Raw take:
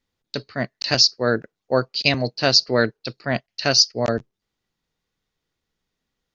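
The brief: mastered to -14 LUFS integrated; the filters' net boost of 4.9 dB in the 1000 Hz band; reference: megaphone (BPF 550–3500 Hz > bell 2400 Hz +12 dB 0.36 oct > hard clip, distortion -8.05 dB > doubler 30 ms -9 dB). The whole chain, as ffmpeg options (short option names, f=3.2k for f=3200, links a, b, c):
-filter_complex "[0:a]highpass=550,lowpass=3.5k,equalizer=f=1k:t=o:g=8,equalizer=f=2.4k:t=o:w=0.36:g=12,asoftclip=type=hard:threshold=-12.5dB,asplit=2[a][b];[b]adelay=30,volume=-9dB[c];[a][c]amix=inputs=2:normalize=0,volume=8.5dB"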